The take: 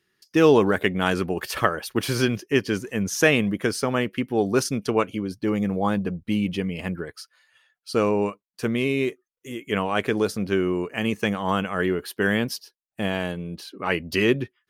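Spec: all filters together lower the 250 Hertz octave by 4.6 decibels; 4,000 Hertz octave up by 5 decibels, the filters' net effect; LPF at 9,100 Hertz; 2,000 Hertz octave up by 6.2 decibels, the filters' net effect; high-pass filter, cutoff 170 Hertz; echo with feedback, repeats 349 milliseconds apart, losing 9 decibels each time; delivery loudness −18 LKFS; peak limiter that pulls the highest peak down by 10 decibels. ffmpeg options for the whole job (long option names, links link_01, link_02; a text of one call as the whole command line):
ffmpeg -i in.wav -af "highpass=170,lowpass=9100,equalizer=frequency=250:width_type=o:gain=-5,equalizer=frequency=2000:width_type=o:gain=7,equalizer=frequency=4000:width_type=o:gain=4,alimiter=limit=-10dB:level=0:latency=1,aecho=1:1:349|698|1047|1396:0.355|0.124|0.0435|0.0152,volume=7dB" out.wav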